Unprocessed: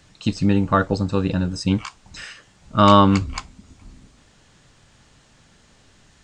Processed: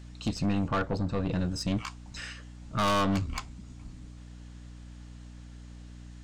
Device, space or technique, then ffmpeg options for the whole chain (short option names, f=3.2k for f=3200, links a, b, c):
valve amplifier with mains hum: -filter_complex "[0:a]aeval=exprs='(tanh(10*val(0)+0.3)-tanh(0.3))/10':c=same,aeval=exprs='val(0)+0.00891*(sin(2*PI*60*n/s)+sin(2*PI*2*60*n/s)/2+sin(2*PI*3*60*n/s)/3+sin(2*PI*4*60*n/s)/4+sin(2*PI*5*60*n/s)/5)':c=same,asettb=1/sr,asplit=3[a][b][c];[a]atrim=end=0.684[d];[b]atrim=start=0.68:end=1.33,asetpts=PTS-STARTPTS,afade=t=in:d=0.004:c=qsin,afade=t=out:st=0.646:d=0.004:c=qsin,highshelf=f=4.7k:g=-12[e];[c]atrim=start=1.326[f];[d][e]acrossfade=d=0.004:c1=hsin:c2=qsin[g];[g][f]acrossfade=d=0.004:c1=qsin:c2=hsin,volume=-3.5dB"